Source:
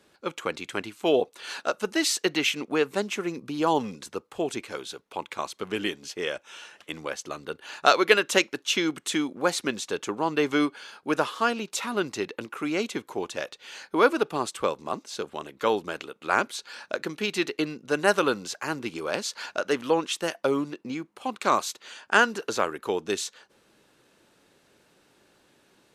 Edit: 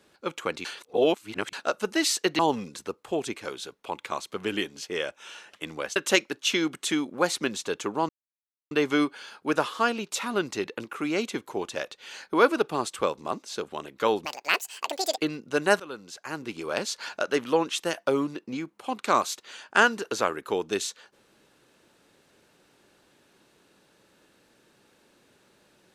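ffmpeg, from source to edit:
-filter_complex "[0:a]asplit=9[s0][s1][s2][s3][s4][s5][s6][s7][s8];[s0]atrim=end=0.652[s9];[s1]atrim=start=0.648:end=1.532,asetpts=PTS-STARTPTS,areverse[s10];[s2]atrim=start=1.528:end=2.392[s11];[s3]atrim=start=3.658:end=7.232[s12];[s4]atrim=start=8.188:end=10.32,asetpts=PTS-STARTPTS,afade=t=out:st=2.128:d=0.004:c=hsin,apad=pad_dur=0.62[s13];[s5]atrim=start=10.32:end=15.864,asetpts=PTS-STARTPTS,afade=t=in:d=0.004:c=hsin[s14];[s6]atrim=start=15.86:end=17.55,asetpts=PTS-STARTPTS,asetrate=80262,aresample=44100[s15];[s7]atrim=start=17.546:end=18.17,asetpts=PTS-STARTPTS,afade=t=out:st=0.62:d=0.004:c=hsin:silence=0.0891251[s16];[s8]atrim=start=18.17,asetpts=PTS-STARTPTS,afade=t=in:d=0.97:silence=0.0891251[s17];[s9][s10]acrossfade=d=0.004:c1=hsin:c2=hsin[s18];[s18][s11]acrossfade=d=0.004:c1=hsin:c2=hsin[s19];[s19][s12]acrossfade=d=0.004:c1=hsin:c2=hsin[s20];[s13][s14]concat=n=2:v=0:a=1[s21];[s20][s21]acrossfade=d=0.004:c1=hsin:c2=hsin[s22];[s22][s15]acrossfade=d=0.004:c1=hsin:c2=hsin[s23];[s16][s17]concat=n=2:v=0:a=1[s24];[s23][s24]acrossfade=d=0.004:c1=hsin:c2=hsin"

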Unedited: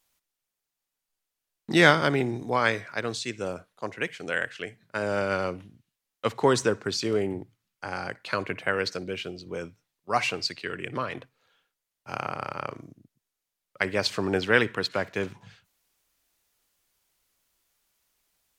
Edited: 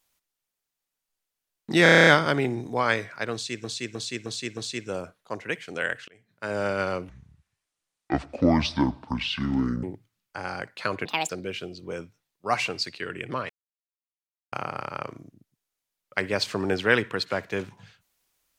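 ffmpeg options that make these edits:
-filter_complex "[0:a]asplit=20[s0][s1][s2][s3][s4][s5][s6][s7][s8][s9][s10][s11][s12][s13][s14][s15][s16][s17][s18][s19];[s0]atrim=end=1.862[s20];[s1]atrim=start=1.828:end=1.862[s21];[s2]atrim=start=1.828:end=1.862[s22];[s3]atrim=start=1.828:end=1.862[s23];[s4]atrim=start=1.828:end=1.862[s24];[s5]atrim=start=1.828:end=1.862[s25];[s6]atrim=start=1.828:end=1.862[s26];[s7]atrim=start=1.828:end=1.862[s27];[s8]atrim=start=1.828:end=3.402[s28];[s9]atrim=start=3.088:end=3.402[s29];[s10]atrim=start=3.088:end=3.402[s30];[s11]atrim=start=3.088:end=3.402[s31];[s12]atrim=start=3.088:end=4.6,asetpts=PTS-STARTPTS,afade=t=out:st=1.508:d=0.004:c=hsin[s32];[s13]atrim=start=4.6:end=5.614,asetpts=PTS-STARTPTS,afade=t=in:d=0.49[s33];[s14]atrim=start=5.61:end=7.31,asetpts=PTS-STARTPTS,asetrate=27342,aresample=44100,atrim=end_sample=120919,asetpts=PTS-STARTPTS[s34];[s15]atrim=start=7.306:end=8.534[s35];[s16]atrim=start=8.53:end=8.93,asetpts=PTS-STARTPTS,asetrate=72765,aresample=44100[s36];[s17]atrim=start=8.926:end=11.13,asetpts=PTS-STARTPTS,afade=t=out:st=2.2:d=0.004:c=hsin[s37];[s18]atrim=start=11.13:end=12.16,asetpts=PTS-STARTPTS,volume=0[s38];[s19]atrim=start=12.16,asetpts=PTS-STARTPTS,afade=t=in:d=0.004:c=hsin[s39];[s20][s21]acrossfade=d=0.004:c1=hsin:c2=hsin[s40];[s40][s22]acrossfade=d=0.004:c1=hsin:c2=hsin[s41];[s41][s23]acrossfade=d=0.004:c1=hsin:c2=hsin[s42];[s42][s24]acrossfade=d=0.004:c1=hsin:c2=hsin[s43];[s43][s25]acrossfade=d=0.004:c1=hsin:c2=hsin[s44];[s44][s26]acrossfade=d=0.004:c1=hsin:c2=hsin[s45];[s45][s27]acrossfade=d=0.004:c1=hsin:c2=hsin[s46];[s46][s28]acrossfade=d=0.004:c1=hsin:c2=hsin[s47];[s47][s29]acrossfade=d=0.004:c1=hsin:c2=hsin[s48];[s48][s30]acrossfade=d=0.004:c1=hsin:c2=hsin[s49];[s49][s31]acrossfade=d=0.004:c1=hsin:c2=hsin[s50];[s32][s33]concat=n=2:v=0:a=1[s51];[s50][s51]acrossfade=d=0.004:c1=hsin:c2=hsin[s52];[s52][s34]acrossfade=d=0.004:c1=hsin:c2=hsin[s53];[s53][s35]acrossfade=d=0.004:c1=hsin:c2=hsin[s54];[s54][s36]acrossfade=d=0.004:c1=hsin:c2=hsin[s55];[s37][s38][s39]concat=n=3:v=0:a=1[s56];[s55][s56]acrossfade=d=0.004:c1=hsin:c2=hsin"

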